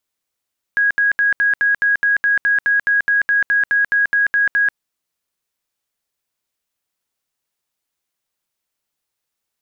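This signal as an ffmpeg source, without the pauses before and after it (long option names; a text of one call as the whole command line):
ffmpeg -f lavfi -i "aevalsrc='0.251*sin(2*PI*1650*mod(t,0.21))*lt(mod(t,0.21),226/1650)':duration=3.99:sample_rate=44100" out.wav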